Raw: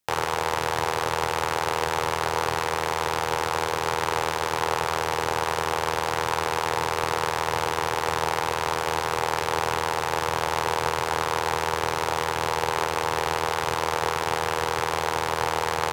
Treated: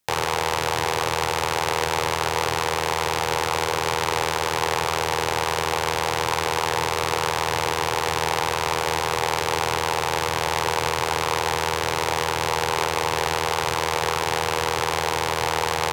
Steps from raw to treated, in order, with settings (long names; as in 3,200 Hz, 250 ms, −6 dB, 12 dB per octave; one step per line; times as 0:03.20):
saturating transformer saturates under 1,900 Hz
level +4.5 dB